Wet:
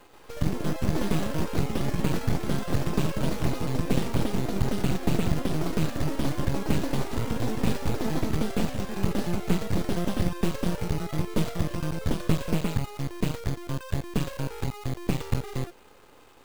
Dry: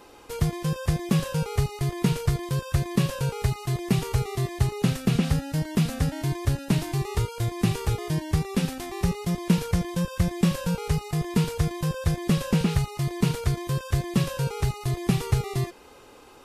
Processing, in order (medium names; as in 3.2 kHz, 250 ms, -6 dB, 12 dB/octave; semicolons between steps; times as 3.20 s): careless resampling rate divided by 4×, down filtered, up hold; half-wave rectifier; ever faster or slower copies 132 ms, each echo +4 st, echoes 3